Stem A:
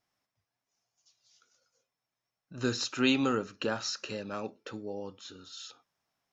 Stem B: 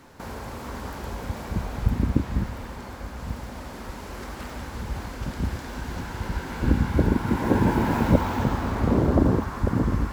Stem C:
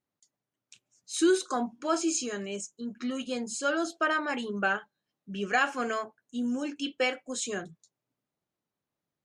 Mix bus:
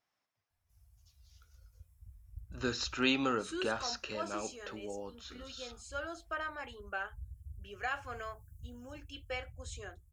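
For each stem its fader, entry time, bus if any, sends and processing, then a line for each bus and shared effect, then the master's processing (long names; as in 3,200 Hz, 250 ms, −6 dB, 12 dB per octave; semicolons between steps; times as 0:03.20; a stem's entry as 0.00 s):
+0.5 dB, 0.00 s, no send, low-shelf EQ 440 Hz −8 dB
−16.5 dB, 0.50 s, no send, inverse Chebyshev band-stop filter 340–2,700 Hz, stop band 70 dB; low-shelf EQ 73 Hz −10 dB
−10.0 dB, 2.30 s, no send, high-pass filter 480 Hz 12 dB per octave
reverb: not used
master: high-shelf EQ 5,800 Hz −9.5 dB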